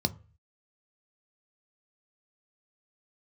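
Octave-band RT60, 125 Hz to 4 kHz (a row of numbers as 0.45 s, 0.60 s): 0.60 s, 0.35 s, 0.35 s, 0.35 s, 0.40 s, 0.25 s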